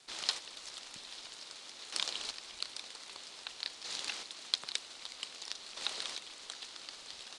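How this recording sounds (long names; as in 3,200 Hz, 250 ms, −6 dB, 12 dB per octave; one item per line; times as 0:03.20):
chopped level 0.52 Hz, depth 60%, duty 20%
a quantiser's noise floor 10 bits, dither none
Ogg Vorbis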